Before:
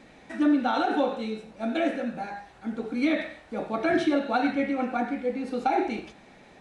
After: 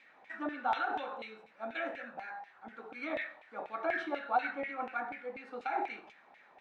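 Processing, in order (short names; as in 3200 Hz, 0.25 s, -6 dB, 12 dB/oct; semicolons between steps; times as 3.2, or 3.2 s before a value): LFO band-pass saw down 4.1 Hz 790–2500 Hz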